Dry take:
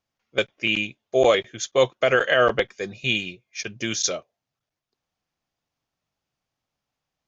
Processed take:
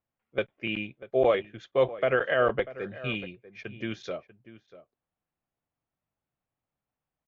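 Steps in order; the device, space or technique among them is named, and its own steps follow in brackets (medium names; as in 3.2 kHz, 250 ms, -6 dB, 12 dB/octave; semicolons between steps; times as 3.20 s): shout across a valley (distance through air 500 m; echo from a far wall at 110 m, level -16 dB); trim -3.5 dB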